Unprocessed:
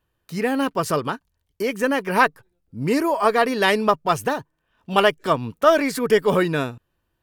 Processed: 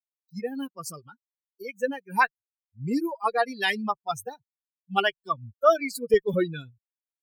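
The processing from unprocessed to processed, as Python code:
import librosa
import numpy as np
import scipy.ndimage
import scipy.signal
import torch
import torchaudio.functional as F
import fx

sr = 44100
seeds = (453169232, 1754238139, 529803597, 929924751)

y = fx.bin_expand(x, sr, power=3.0)
y = fx.highpass(y, sr, hz=fx.steps((0.0, 140.0), (6.14, 54.0)), slope=6)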